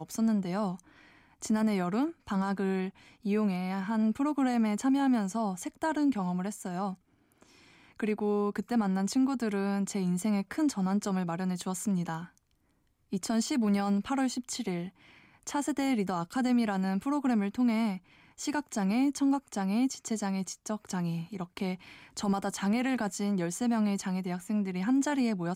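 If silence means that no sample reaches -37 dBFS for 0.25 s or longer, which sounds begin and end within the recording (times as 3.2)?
1.42–2.89
3.25–6.93
8–12.25
13.13–14.88
15.47–17.97
18.4–21.75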